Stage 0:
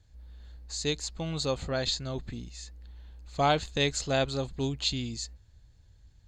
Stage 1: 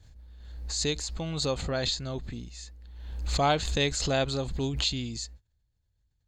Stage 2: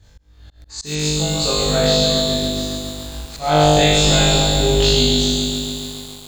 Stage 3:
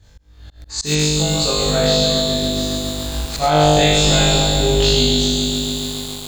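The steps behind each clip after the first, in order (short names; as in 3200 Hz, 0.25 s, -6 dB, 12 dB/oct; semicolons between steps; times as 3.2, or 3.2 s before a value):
gate -48 dBFS, range -19 dB; backwards sustainer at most 44 dB/s
flutter echo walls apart 3.4 m, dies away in 1.4 s; auto swell 0.265 s; lo-fi delay 0.139 s, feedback 80%, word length 7-bit, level -5 dB; gain +4.5 dB
recorder AGC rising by 7.9 dB/s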